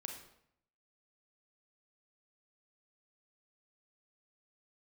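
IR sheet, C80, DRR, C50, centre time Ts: 8.5 dB, 2.5 dB, 5.0 dB, 29 ms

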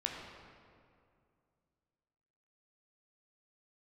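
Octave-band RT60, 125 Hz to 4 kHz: 2.9, 2.7, 2.5, 2.2, 1.8, 1.4 s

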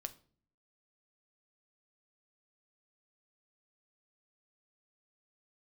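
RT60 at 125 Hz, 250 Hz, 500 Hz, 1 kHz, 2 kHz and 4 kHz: 0.80, 0.80, 0.55, 0.40, 0.35, 0.35 s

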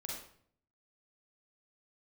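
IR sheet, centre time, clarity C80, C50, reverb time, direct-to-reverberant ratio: 52 ms, 5.0 dB, 0.5 dB, 0.60 s, -3.0 dB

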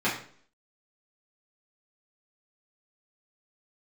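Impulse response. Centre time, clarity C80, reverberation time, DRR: 32 ms, 10.5 dB, 0.50 s, -9.5 dB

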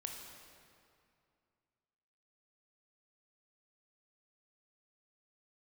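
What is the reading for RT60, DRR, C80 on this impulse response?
2.4 s, 1.5 dB, 4.5 dB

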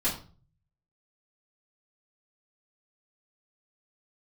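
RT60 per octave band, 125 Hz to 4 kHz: 0.90, 0.55, 0.40, 0.35, 0.30, 0.30 s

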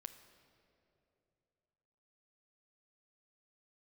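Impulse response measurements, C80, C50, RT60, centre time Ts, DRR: 11.5 dB, 10.5 dB, 2.9 s, 18 ms, 8.5 dB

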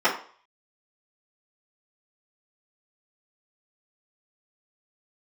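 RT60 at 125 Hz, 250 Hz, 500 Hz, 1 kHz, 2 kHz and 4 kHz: 0.30, 0.40, 0.45, 0.50, 0.45, 0.40 s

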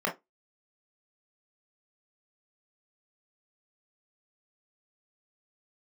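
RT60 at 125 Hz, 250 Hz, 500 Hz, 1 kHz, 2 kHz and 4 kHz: 0.10, 0.20, 0.20, 0.15, 0.15, 0.15 s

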